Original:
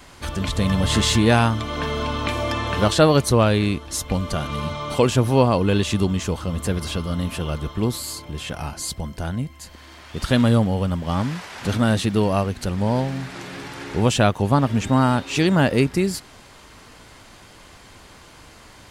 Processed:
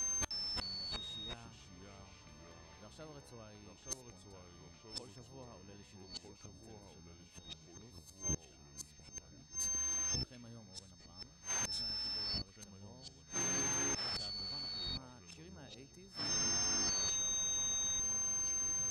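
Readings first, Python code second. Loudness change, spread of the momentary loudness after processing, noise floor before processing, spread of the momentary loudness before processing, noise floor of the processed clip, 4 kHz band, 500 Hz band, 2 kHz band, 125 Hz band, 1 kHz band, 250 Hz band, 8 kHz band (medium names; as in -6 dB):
-15.0 dB, 22 LU, -46 dBFS, 13 LU, -60 dBFS, -11.5 dB, -31.0 dB, -22.0 dB, -30.0 dB, -26.5 dB, -30.5 dB, -1.5 dB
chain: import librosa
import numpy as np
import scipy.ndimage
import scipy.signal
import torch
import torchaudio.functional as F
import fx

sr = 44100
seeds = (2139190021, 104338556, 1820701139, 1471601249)

y = x + 10.0 ** (-27.0 / 20.0) * np.sin(2.0 * np.pi * 6300.0 * np.arange(len(x)) / sr)
y = fx.gate_flip(y, sr, shuts_db=-18.0, range_db=-31)
y = fx.echo_pitch(y, sr, ms=307, semitones=-3, count=3, db_per_echo=-3.0)
y = F.gain(torch.from_numpy(y), -7.5).numpy()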